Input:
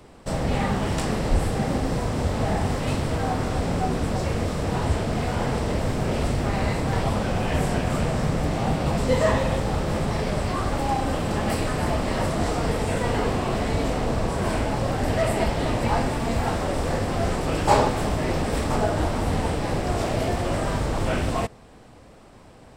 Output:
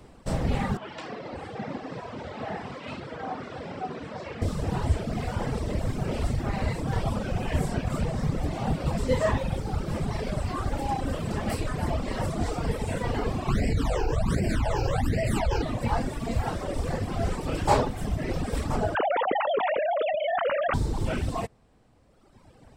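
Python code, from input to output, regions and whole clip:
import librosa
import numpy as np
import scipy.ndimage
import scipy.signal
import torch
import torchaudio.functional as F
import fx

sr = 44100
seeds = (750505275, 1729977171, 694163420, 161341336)

y = fx.chain(x, sr, fx.bandpass_edges(low_hz=150.0, high_hz=3500.0),
    fx.low_shelf(hz=420.0, db=-8.5),
    fx.room_flutter(wall_m=11.5, rt60_s=0.46), at=(0.77, 4.42))
y = fx.chain(y, sr, fx.phaser_stages(stages=12, low_hz=190.0, high_hz=1200.0, hz=1.3, feedback_pct=10),
    fx.env_flatten(amount_pct=100), at=(13.48, 15.62))
y = fx.chain(y, sr, fx.sine_speech(),
    fx.low_shelf_res(hz=360.0, db=11.5, q=1.5),
    fx.env_flatten(amount_pct=100), at=(18.95, 20.74))
y = fx.dereverb_blind(y, sr, rt60_s=2.0)
y = fx.low_shelf(y, sr, hz=230.0, db=5.0)
y = y * librosa.db_to_amplitude(-3.5)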